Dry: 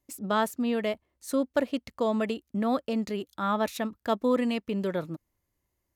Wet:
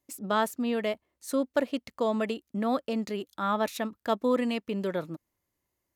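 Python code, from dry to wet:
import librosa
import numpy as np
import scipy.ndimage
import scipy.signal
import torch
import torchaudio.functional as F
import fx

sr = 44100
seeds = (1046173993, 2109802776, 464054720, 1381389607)

y = fx.low_shelf(x, sr, hz=94.0, db=-11.5)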